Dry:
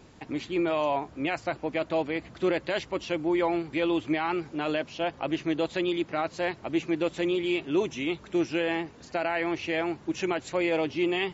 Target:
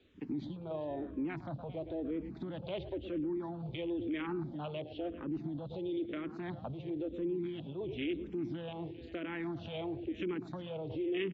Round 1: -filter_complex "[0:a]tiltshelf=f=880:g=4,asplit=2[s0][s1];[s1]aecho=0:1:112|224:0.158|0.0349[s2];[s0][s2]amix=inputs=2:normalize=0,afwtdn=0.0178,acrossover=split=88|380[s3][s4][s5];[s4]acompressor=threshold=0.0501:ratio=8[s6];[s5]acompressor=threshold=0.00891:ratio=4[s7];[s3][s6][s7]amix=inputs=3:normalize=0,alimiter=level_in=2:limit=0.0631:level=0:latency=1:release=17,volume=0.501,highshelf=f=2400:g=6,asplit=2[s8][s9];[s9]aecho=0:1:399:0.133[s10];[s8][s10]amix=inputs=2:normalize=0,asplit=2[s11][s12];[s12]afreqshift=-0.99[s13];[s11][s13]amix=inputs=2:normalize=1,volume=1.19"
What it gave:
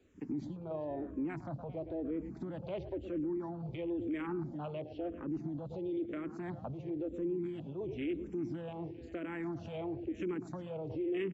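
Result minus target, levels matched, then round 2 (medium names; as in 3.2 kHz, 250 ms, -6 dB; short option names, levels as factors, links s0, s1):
4 kHz band -9.0 dB
-filter_complex "[0:a]tiltshelf=f=880:g=4,asplit=2[s0][s1];[s1]aecho=0:1:112|224:0.158|0.0349[s2];[s0][s2]amix=inputs=2:normalize=0,afwtdn=0.0178,acrossover=split=88|380[s3][s4][s5];[s4]acompressor=threshold=0.0501:ratio=8[s6];[s5]acompressor=threshold=0.00891:ratio=4[s7];[s3][s6][s7]amix=inputs=3:normalize=0,alimiter=level_in=2:limit=0.0631:level=0:latency=1:release=17,volume=0.501,lowpass=f=3600:t=q:w=4.1,highshelf=f=2400:g=6,asplit=2[s8][s9];[s9]aecho=0:1:399:0.133[s10];[s8][s10]amix=inputs=2:normalize=0,asplit=2[s11][s12];[s12]afreqshift=-0.99[s13];[s11][s13]amix=inputs=2:normalize=1,volume=1.19"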